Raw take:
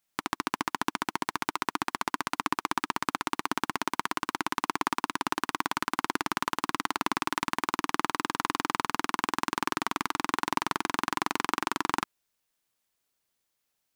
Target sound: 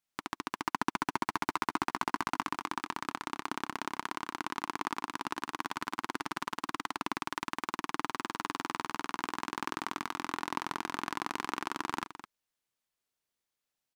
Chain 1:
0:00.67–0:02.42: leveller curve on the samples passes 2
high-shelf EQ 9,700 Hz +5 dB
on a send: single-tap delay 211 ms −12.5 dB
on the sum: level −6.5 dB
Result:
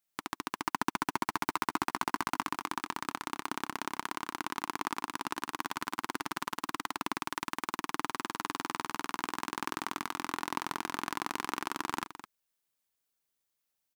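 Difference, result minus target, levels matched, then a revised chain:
8,000 Hz band +3.0 dB
0:00.67–0:02.42: leveller curve on the samples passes 2
high-shelf EQ 9,700 Hz −5.5 dB
on a send: single-tap delay 211 ms −12.5 dB
on the sum: level −6.5 dB

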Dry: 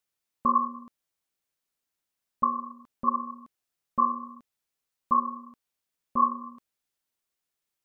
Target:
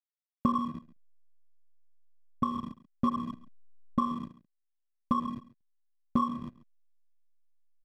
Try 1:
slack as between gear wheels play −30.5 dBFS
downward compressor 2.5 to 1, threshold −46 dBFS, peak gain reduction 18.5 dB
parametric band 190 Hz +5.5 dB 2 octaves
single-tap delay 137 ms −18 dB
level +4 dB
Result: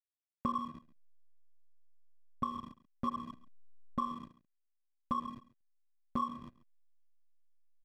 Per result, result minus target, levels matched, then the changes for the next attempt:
downward compressor: peak gain reduction +4 dB; 250 Hz band −3.5 dB
change: downward compressor 2.5 to 1, threshold −39.5 dBFS, peak gain reduction 14.5 dB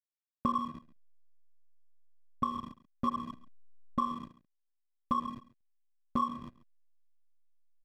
250 Hz band −3.5 dB
change: parametric band 190 Hz +13 dB 2 octaves

